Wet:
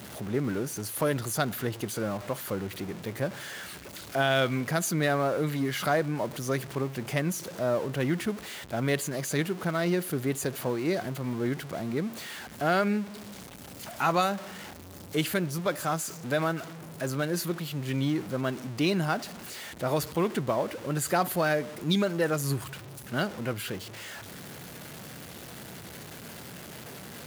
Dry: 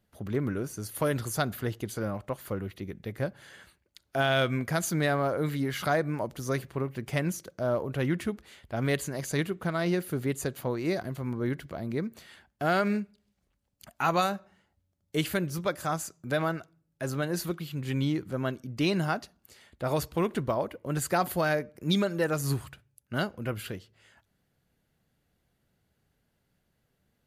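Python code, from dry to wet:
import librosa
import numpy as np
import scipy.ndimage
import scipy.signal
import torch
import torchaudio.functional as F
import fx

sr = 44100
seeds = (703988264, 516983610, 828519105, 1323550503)

y = x + 0.5 * 10.0 ** (-36.0 / 20.0) * np.sign(x)
y = scipy.signal.sosfilt(scipy.signal.butter(2, 120.0, 'highpass', fs=sr, output='sos'), y)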